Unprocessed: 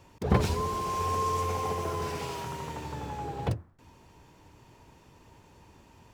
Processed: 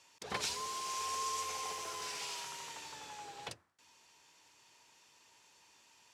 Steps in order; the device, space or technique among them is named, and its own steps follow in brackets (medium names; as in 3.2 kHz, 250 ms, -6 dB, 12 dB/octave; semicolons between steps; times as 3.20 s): piezo pickup straight into a mixer (low-pass 6.6 kHz 12 dB/octave; differentiator); trim +7.5 dB